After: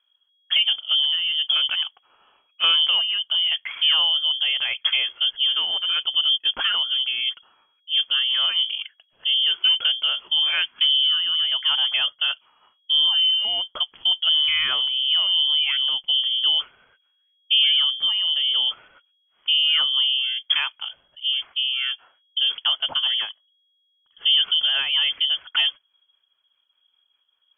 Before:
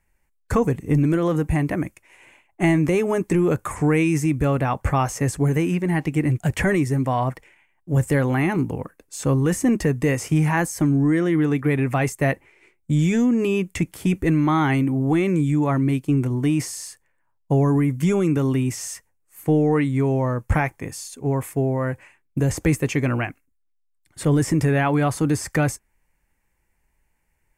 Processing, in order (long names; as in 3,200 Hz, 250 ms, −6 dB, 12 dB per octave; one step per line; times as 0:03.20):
high-frequency loss of the air 190 metres
rotating-speaker cabinet horn 1 Hz, later 5 Hz, at 0:24.03
voice inversion scrambler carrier 3,300 Hz